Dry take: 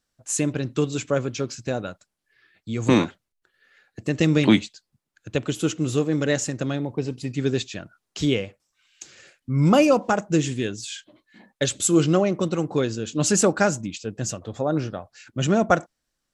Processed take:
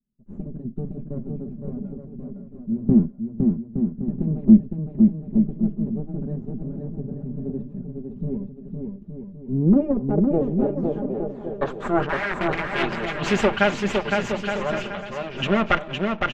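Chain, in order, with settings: comb filter that takes the minimum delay 5 ms; 12.09–12.83 s: integer overflow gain 22 dB; low-pass sweep 220 Hz -> 2.8 kHz, 9.26–12.89 s; on a send: bouncing-ball echo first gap 510 ms, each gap 0.7×, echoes 5

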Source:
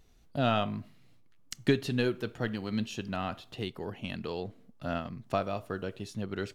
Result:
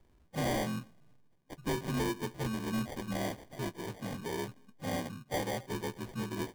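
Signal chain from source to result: frequency axis rescaled in octaves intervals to 85%; sample-and-hold 33×; hard clipper -30 dBFS, distortion -8 dB; trim +1 dB

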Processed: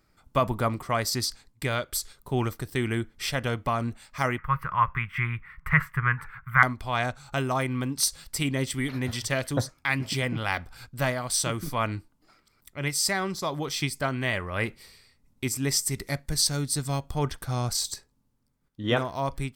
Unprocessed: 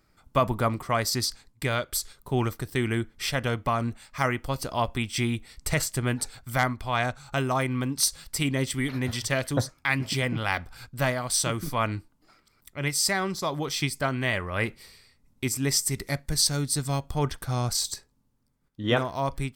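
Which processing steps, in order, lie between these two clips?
4.38–6.63 s: FFT filter 110 Hz 0 dB, 160 Hz +6 dB, 260 Hz -18 dB, 450 Hz -10 dB, 680 Hz -15 dB, 1.1 kHz +13 dB, 2 kHz +10 dB, 4.3 kHz -25 dB, 7.6 kHz -28 dB, 15 kHz -9 dB; trim -1 dB

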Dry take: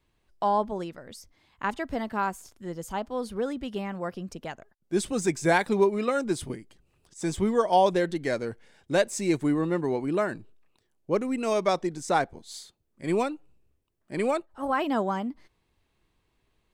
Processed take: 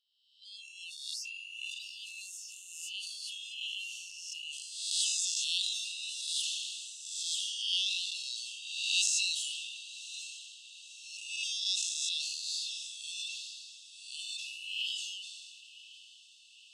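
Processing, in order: reverse spectral sustain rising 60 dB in 1.14 s; low-pass 6.1 kHz 12 dB/octave; spectral noise reduction 20 dB; brick-wall FIR high-pass 2.6 kHz; echo that smears into a reverb 1045 ms, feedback 64%, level -15.5 dB; decay stretcher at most 26 dB/s; trim +5 dB

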